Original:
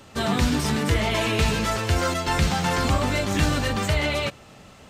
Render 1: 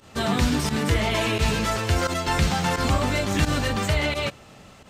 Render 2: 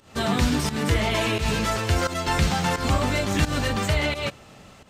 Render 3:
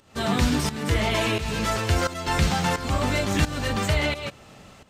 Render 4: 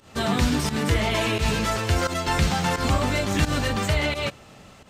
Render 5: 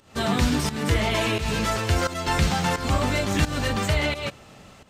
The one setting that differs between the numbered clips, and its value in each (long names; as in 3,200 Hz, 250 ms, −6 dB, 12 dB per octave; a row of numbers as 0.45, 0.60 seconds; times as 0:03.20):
fake sidechain pumping, release: 69, 169, 411, 114, 265 milliseconds